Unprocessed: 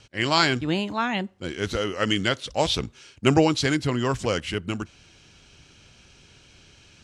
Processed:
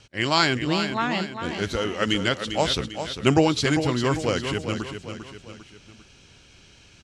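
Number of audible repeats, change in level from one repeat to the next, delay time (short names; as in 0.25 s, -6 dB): 3, -6.5 dB, 0.398 s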